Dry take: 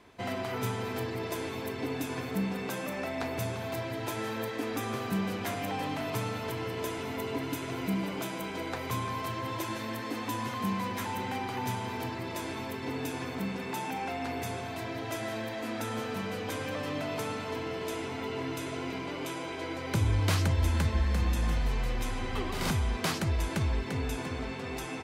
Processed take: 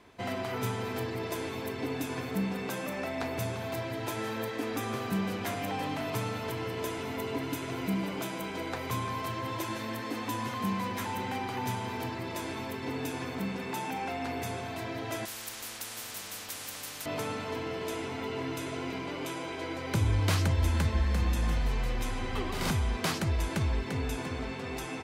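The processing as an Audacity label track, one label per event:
15.250000	17.060000	every bin compressed towards the loudest bin 10 to 1

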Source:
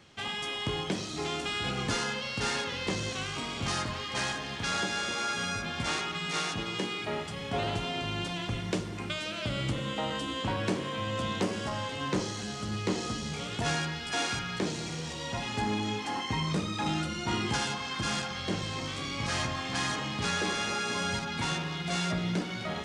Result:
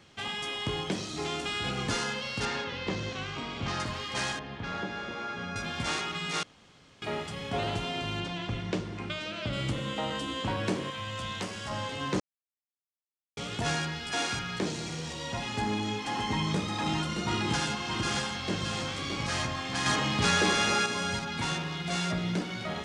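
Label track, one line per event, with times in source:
2.450000	3.800000	high-frequency loss of the air 130 metres
4.390000	5.560000	head-to-tape spacing loss at 10 kHz 30 dB
6.430000	7.020000	fill with room tone
8.200000	9.530000	high-frequency loss of the air 84 metres
10.900000	11.700000	parametric band 320 Hz −10.5 dB 2.3 octaves
12.200000	13.370000	silence
15.440000	19.230000	single-tap delay 620 ms −5.5 dB
19.860000	20.860000	clip gain +5.5 dB

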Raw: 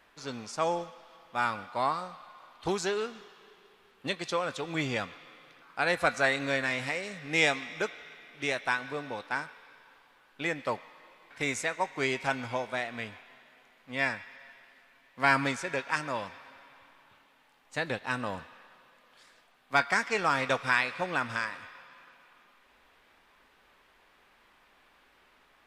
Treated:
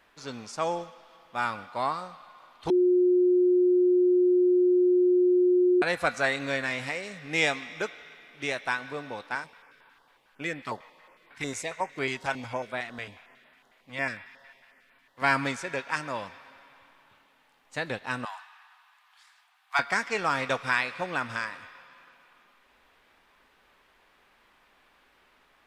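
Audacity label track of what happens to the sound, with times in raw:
2.700000	5.820000	beep over 360 Hz −18 dBFS
9.350000	15.220000	notch on a step sequencer 11 Hz 200–6,300 Hz
18.250000	19.790000	Butterworth high-pass 740 Hz 72 dB per octave

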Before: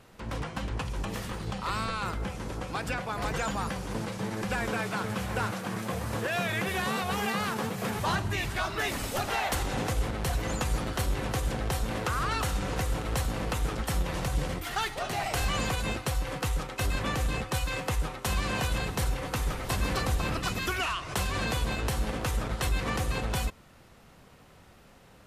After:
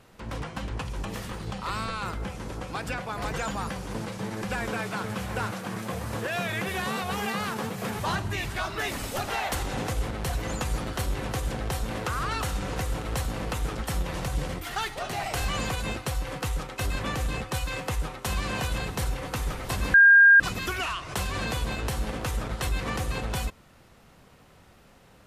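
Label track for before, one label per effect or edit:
19.940000	20.400000	beep over 1,610 Hz −11 dBFS

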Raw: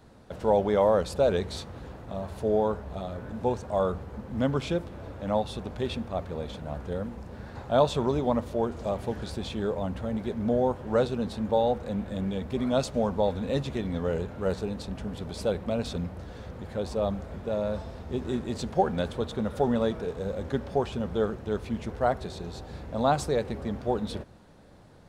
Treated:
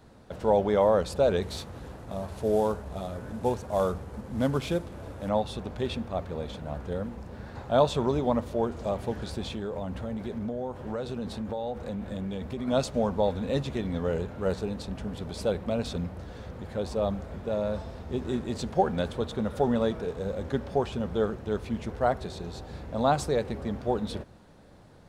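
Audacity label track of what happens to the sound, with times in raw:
1.420000	5.290000	variable-slope delta modulation 64 kbit/s
9.430000	12.680000	downward compressor, threshold −29 dBFS

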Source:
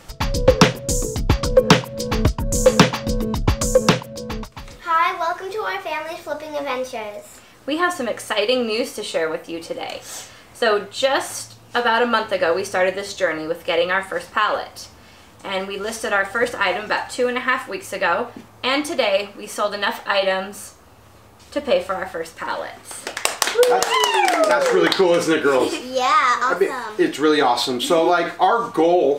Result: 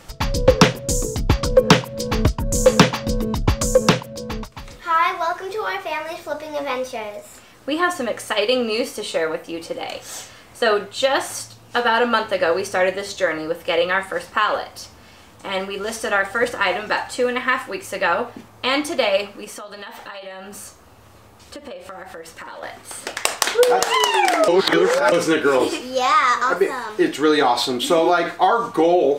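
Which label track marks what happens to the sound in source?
19.440000	22.630000	downward compressor 12 to 1, threshold −31 dBFS
24.480000	25.120000	reverse

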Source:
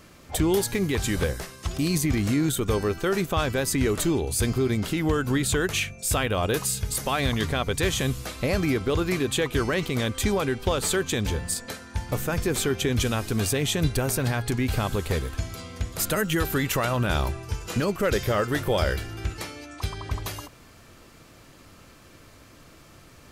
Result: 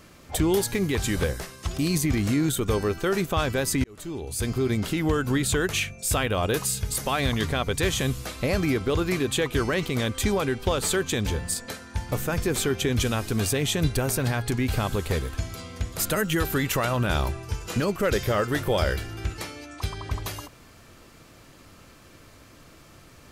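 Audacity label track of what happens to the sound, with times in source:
3.840000	4.720000	fade in

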